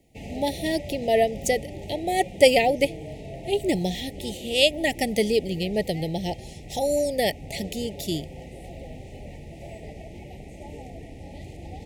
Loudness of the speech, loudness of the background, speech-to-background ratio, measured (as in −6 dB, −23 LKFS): −25.0 LKFS, −40.0 LKFS, 15.0 dB